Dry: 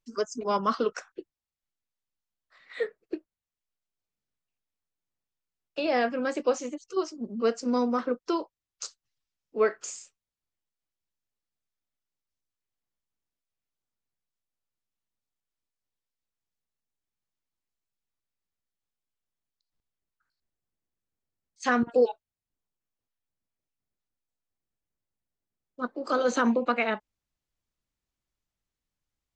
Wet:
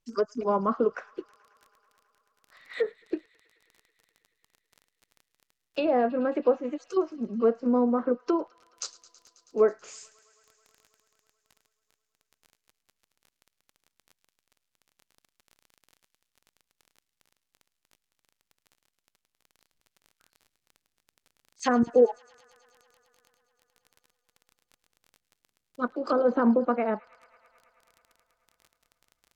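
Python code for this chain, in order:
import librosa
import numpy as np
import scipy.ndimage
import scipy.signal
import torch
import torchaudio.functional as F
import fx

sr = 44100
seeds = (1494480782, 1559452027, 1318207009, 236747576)

y = fx.dmg_crackle(x, sr, seeds[0], per_s=21.0, level_db=-44.0)
y = fx.env_lowpass_down(y, sr, base_hz=910.0, full_db=-24.0)
y = fx.echo_wet_highpass(y, sr, ms=108, feedback_pct=84, hz=1800.0, wet_db=-19.5)
y = F.gain(torch.from_numpy(y), 3.0).numpy()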